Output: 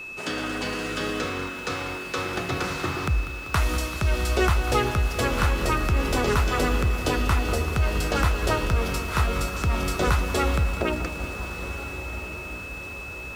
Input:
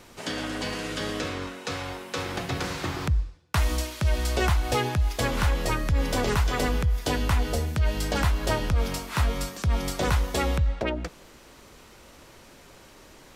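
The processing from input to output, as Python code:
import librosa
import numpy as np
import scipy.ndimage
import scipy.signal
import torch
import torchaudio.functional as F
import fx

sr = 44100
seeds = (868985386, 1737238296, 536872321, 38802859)

p1 = fx.peak_eq(x, sr, hz=1300.0, db=7.0, octaves=0.37)
p2 = p1 + fx.echo_diffused(p1, sr, ms=1433, feedback_pct=55, wet_db=-12.5, dry=0)
p3 = p2 + 10.0 ** (-35.0 / 20.0) * np.sin(2.0 * np.pi * 2600.0 * np.arange(len(p2)) / sr)
p4 = fx.peak_eq(p3, sr, hz=380.0, db=5.5, octaves=0.44)
y = fx.echo_crushed(p4, sr, ms=194, feedback_pct=80, bits=7, wet_db=-13.5)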